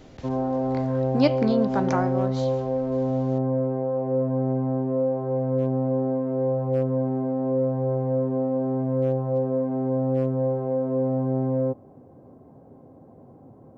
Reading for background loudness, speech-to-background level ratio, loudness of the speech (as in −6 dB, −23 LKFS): −25.0 LKFS, −1.0 dB, −26.0 LKFS